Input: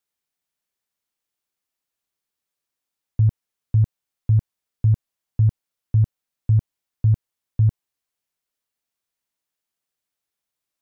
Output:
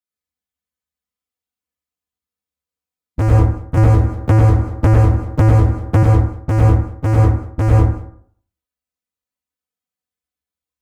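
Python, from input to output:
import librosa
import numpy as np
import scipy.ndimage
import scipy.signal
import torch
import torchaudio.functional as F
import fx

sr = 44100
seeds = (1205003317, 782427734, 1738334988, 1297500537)

y = fx.spec_quant(x, sr, step_db=15)
y = scipy.signal.sosfilt(scipy.signal.butter(4, 46.0, 'highpass', fs=sr, output='sos'), y)
y = fx.peak_eq(y, sr, hz=86.0, db=13.5, octaves=2.0)
y = fx.notch(y, sr, hz=420.0, q=14.0)
y = y + 0.87 * np.pad(y, (int(4.0 * sr / 1000.0), 0))[:len(y)]
y = fx.leveller(y, sr, passes=5)
y = 10.0 ** (-11.0 / 20.0) * np.tanh(y / 10.0 ** (-11.0 / 20.0))
y = y + 10.0 ** (-20.0 / 20.0) * np.pad(y, (int(192 * sr / 1000.0), 0))[:len(y)]
y = fx.rev_plate(y, sr, seeds[0], rt60_s=0.57, hf_ratio=0.45, predelay_ms=85, drr_db=-4.0)
y = fx.band_squash(y, sr, depth_pct=100, at=(3.77, 6.03))
y = y * librosa.db_to_amplitude(-2.5)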